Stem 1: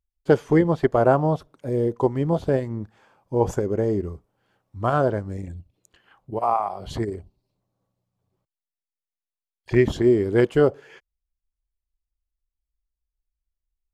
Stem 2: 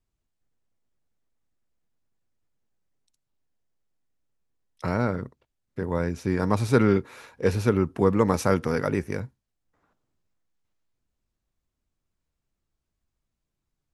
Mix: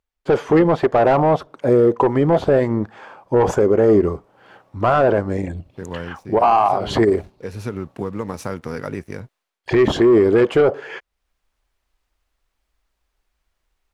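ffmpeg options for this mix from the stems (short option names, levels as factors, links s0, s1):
-filter_complex "[0:a]asplit=2[s0][s1];[s1]highpass=f=720:p=1,volume=10,asoftclip=type=tanh:threshold=0.668[s2];[s0][s2]amix=inputs=2:normalize=0,lowpass=f=1400:p=1,volume=0.501,volume=1.19[s3];[1:a]acompressor=threshold=0.0891:ratio=6,aeval=exprs='sgn(val(0))*max(abs(val(0))-0.00335,0)':c=same,volume=0.224[s4];[s3][s4]amix=inputs=2:normalize=0,dynaudnorm=f=240:g=3:m=4.22,alimiter=limit=0.447:level=0:latency=1:release=25"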